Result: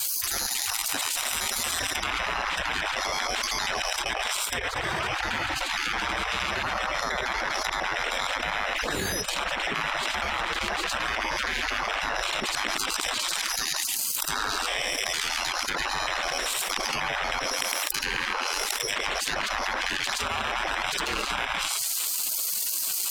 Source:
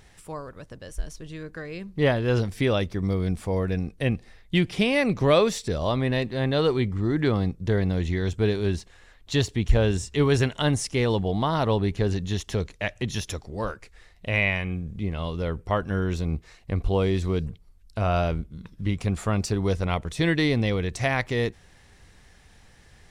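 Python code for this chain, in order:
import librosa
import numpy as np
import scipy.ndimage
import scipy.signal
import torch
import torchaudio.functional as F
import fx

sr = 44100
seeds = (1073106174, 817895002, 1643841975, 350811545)

p1 = fx.local_reverse(x, sr, ms=78.0)
p2 = p1 + fx.echo_feedback(p1, sr, ms=108, feedback_pct=42, wet_db=-15.5, dry=0)
p3 = fx.spec_paint(p2, sr, seeds[0], shape='fall', start_s=8.76, length_s=0.46, low_hz=290.0, high_hz=7400.0, level_db=-25.0)
p4 = scipy.signal.sosfilt(scipy.signal.butter(2, 46.0, 'highpass', fs=sr, output='sos'), p3)
p5 = fx.hum_notches(p4, sr, base_hz=50, count=3)
p6 = np.repeat(p5[::8], 8)[:len(p5)]
p7 = fx.low_shelf(p6, sr, hz=63.0, db=-7.5)
p8 = fx.spec_gate(p7, sr, threshold_db=-25, keep='weak')
p9 = fx.env_lowpass_down(p8, sr, base_hz=2100.0, full_db=-37.0)
p10 = 10.0 ** (-39.0 / 20.0) * np.tanh(p9 / 10.0 ** (-39.0 / 20.0))
p11 = p9 + (p10 * 10.0 ** (-4.5 / 20.0))
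p12 = fx.high_shelf(p11, sr, hz=9000.0, db=7.0)
p13 = fx.env_flatten(p12, sr, amount_pct=100)
y = p13 * 10.0 ** (4.5 / 20.0)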